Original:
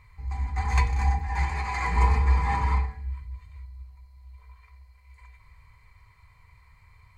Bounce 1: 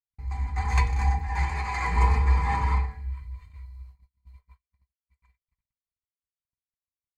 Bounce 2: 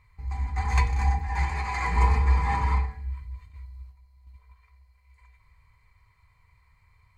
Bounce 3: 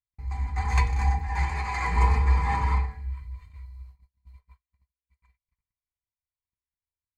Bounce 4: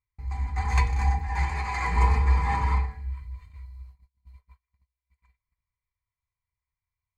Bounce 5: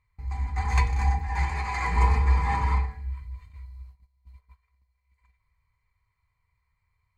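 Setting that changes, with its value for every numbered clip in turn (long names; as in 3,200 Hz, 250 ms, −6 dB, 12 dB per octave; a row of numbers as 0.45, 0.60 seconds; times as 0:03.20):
noise gate, range: −60, −6, −47, −35, −19 decibels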